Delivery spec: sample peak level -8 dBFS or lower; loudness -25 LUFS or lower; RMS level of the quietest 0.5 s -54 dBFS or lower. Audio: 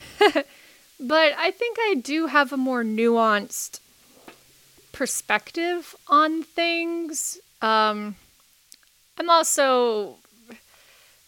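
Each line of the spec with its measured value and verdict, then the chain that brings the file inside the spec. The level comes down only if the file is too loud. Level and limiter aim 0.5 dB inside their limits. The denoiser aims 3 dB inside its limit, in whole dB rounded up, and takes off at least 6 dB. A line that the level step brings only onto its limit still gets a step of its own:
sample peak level -3.5 dBFS: fail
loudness -22.0 LUFS: fail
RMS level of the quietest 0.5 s -58 dBFS: pass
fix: trim -3.5 dB; peak limiter -8.5 dBFS

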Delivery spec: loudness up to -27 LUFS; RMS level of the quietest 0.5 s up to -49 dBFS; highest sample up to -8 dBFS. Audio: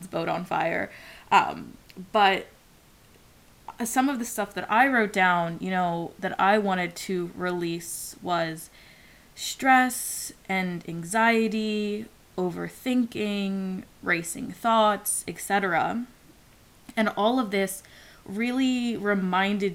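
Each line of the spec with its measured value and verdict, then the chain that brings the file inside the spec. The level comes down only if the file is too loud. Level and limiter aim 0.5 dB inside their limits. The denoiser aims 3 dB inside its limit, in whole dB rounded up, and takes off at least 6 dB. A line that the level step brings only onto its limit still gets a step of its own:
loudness -25.5 LUFS: fail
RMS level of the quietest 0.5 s -56 dBFS: pass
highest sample -6.5 dBFS: fail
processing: trim -2 dB

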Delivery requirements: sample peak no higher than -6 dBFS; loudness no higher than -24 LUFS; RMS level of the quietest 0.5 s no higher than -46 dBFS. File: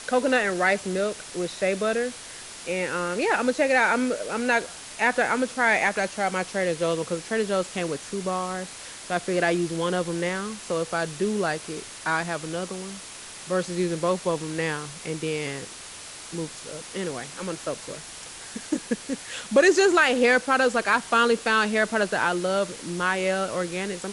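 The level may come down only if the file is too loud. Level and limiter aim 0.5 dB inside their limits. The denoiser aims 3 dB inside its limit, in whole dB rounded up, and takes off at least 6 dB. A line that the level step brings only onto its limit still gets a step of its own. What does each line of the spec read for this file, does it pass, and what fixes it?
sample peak -6.5 dBFS: pass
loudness -25.0 LUFS: pass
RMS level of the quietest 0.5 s -41 dBFS: fail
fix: noise reduction 8 dB, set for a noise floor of -41 dBFS

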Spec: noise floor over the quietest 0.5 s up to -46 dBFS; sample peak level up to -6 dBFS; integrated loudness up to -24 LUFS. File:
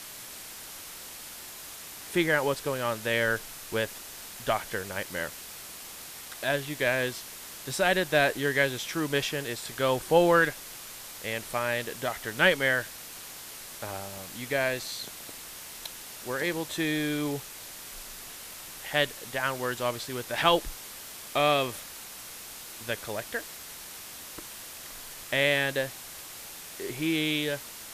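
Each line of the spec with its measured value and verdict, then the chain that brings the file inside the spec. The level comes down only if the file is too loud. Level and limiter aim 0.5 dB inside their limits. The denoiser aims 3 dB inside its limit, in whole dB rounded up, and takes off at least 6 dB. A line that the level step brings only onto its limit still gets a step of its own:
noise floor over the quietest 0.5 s -43 dBFS: fail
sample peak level -7.0 dBFS: pass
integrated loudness -28.5 LUFS: pass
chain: noise reduction 6 dB, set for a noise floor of -43 dBFS

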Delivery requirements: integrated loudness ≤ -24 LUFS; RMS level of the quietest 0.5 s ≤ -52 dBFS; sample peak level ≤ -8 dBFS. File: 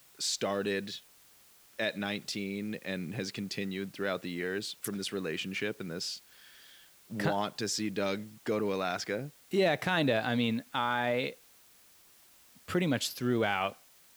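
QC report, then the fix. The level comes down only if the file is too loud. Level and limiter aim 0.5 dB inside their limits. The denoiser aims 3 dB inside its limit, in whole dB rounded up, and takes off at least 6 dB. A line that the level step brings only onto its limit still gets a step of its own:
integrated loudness -33.0 LUFS: pass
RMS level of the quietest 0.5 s -60 dBFS: pass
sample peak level -15.5 dBFS: pass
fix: none needed

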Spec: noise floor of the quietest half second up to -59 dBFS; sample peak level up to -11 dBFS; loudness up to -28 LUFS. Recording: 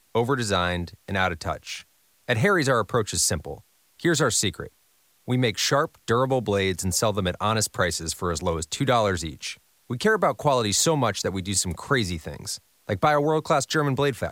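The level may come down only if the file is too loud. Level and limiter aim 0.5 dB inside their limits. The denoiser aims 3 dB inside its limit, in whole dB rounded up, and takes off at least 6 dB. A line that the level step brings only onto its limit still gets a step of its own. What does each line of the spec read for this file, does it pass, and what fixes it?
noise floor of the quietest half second -63 dBFS: pass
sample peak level -6.5 dBFS: fail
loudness -24.0 LUFS: fail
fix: trim -4.5 dB; peak limiter -11.5 dBFS

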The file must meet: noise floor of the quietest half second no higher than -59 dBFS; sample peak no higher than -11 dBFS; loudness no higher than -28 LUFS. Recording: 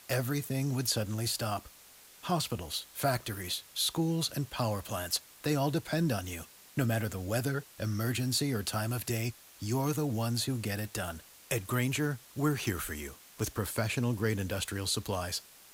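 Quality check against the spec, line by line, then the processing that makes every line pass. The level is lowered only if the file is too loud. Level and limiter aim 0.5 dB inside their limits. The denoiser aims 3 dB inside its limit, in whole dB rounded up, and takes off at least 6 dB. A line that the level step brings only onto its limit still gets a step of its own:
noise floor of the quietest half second -56 dBFS: fail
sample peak -17.0 dBFS: pass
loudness -33.0 LUFS: pass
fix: noise reduction 6 dB, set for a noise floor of -56 dBFS

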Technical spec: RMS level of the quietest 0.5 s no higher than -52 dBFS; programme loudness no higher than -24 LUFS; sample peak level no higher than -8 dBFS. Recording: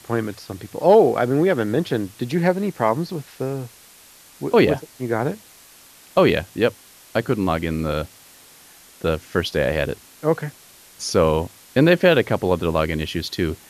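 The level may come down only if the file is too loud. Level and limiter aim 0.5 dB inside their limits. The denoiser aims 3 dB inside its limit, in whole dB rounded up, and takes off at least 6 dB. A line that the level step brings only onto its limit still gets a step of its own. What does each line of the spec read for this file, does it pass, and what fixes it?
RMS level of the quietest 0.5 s -48 dBFS: fail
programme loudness -21.0 LUFS: fail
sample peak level -3.0 dBFS: fail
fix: noise reduction 6 dB, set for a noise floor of -48 dBFS; trim -3.5 dB; peak limiter -8.5 dBFS

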